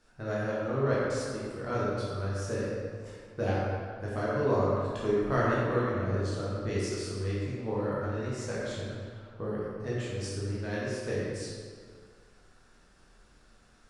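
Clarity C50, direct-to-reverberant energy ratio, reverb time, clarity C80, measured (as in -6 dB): -3.0 dB, -8.5 dB, 2.0 s, -1.0 dB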